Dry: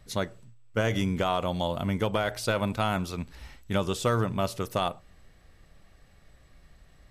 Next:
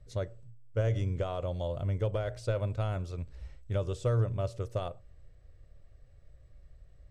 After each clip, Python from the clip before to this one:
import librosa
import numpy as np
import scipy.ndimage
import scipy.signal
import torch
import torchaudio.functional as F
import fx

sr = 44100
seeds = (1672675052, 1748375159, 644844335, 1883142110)

y = fx.curve_eq(x, sr, hz=(120.0, 200.0, 560.0, 820.0, 1300.0, 3500.0, 8100.0, 12000.0), db=(0, -17, -4, -17, -15, -17, -15, -29))
y = F.gain(torch.from_numpy(y), 2.0).numpy()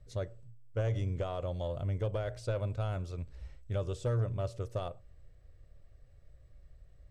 y = 10.0 ** (-21.5 / 20.0) * np.tanh(x / 10.0 ** (-21.5 / 20.0))
y = F.gain(torch.from_numpy(y), -1.5).numpy()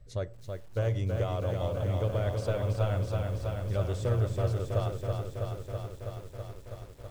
y = fx.echo_crushed(x, sr, ms=326, feedback_pct=80, bits=10, wet_db=-4.5)
y = F.gain(torch.from_numpy(y), 2.5).numpy()